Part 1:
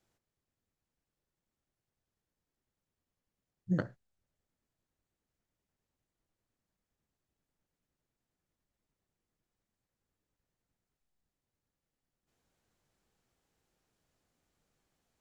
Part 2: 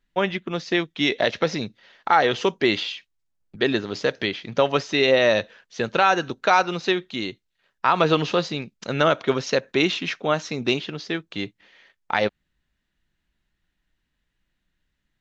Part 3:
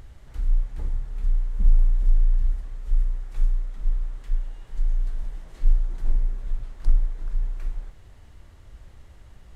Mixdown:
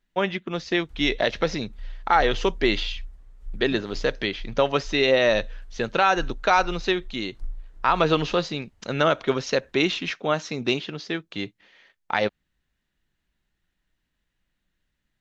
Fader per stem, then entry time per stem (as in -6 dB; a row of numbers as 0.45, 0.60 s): -11.5, -1.5, -14.5 dB; 0.00, 0.00, 0.55 s